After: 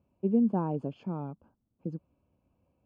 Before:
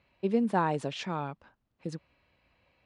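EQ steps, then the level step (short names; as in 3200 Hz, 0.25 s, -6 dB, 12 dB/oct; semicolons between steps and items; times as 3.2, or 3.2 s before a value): running mean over 23 samples; bell 82 Hz +6 dB 0.77 oct; bell 230 Hz +9.5 dB 1.7 oct; -6.0 dB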